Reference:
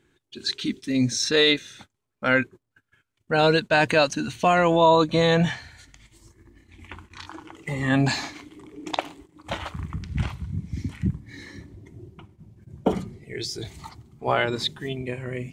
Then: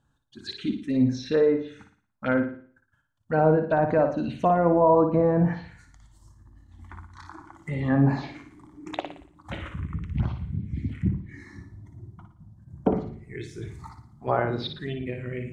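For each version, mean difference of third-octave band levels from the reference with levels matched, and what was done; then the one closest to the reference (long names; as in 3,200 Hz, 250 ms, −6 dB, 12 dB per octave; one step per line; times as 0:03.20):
6.0 dB: treble cut that deepens with the level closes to 1,000 Hz, closed at −15.5 dBFS
phaser swept by the level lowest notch 370 Hz, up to 3,400 Hz, full sweep at −19.5 dBFS
high-shelf EQ 2,400 Hz −8.5 dB
flutter between parallel walls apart 9.9 metres, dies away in 0.47 s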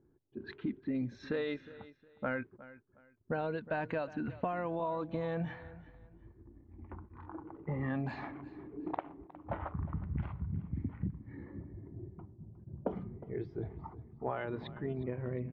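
8.5 dB: low-pass that shuts in the quiet parts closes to 700 Hz, open at −15.5 dBFS
low-pass filter 1,500 Hz 12 dB per octave
downward compressor 12 to 1, threshold −29 dBFS, peak gain reduction 16.5 dB
on a send: repeating echo 361 ms, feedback 27%, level −17.5 dB
on the sum: level −3 dB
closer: first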